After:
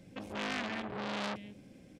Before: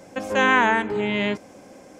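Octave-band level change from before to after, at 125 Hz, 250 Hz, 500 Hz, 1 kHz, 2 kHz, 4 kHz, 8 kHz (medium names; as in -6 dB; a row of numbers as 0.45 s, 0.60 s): -12.0 dB, -14.0 dB, -17.5 dB, -19.0 dB, -19.0 dB, -11.0 dB, -11.0 dB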